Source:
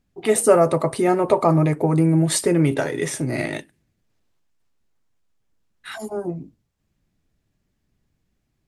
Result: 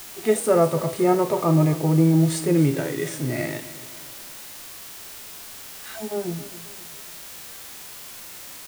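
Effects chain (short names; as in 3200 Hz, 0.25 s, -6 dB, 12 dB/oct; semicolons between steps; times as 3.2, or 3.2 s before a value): requantised 6-bit, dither triangular; harmonic-percussive split percussive -11 dB; feedback echo 0.267 s, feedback 44%, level -16 dB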